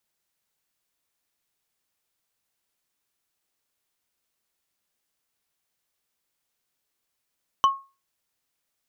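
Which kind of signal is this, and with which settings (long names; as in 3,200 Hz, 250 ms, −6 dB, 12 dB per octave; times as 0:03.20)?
struck wood, lowest mode 1,090 Hz, decay 0.30 s, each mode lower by 10 dB, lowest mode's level −11.5 dB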